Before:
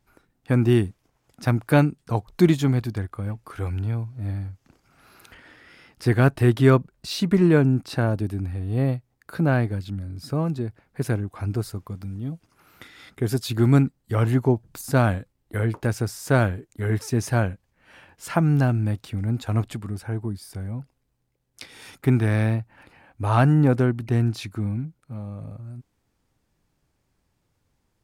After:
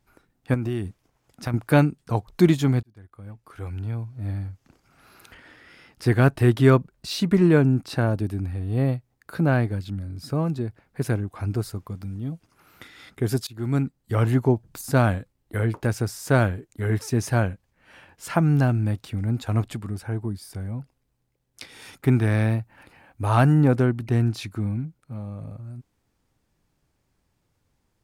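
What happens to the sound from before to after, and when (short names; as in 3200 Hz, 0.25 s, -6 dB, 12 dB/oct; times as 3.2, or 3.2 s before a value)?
0.54–1.54 compressor, threshold -23 dBFS
2.83–4.39 fade in
13.47–14.12 fade in, from -22 dB
22.5–23.61 high shelf 9300 Hz +7 dB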